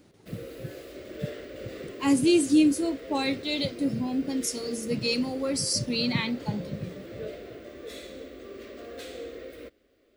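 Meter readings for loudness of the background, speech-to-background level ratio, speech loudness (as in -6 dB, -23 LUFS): -41.5 LUFS, 15.0 dB, -26.5 LUFS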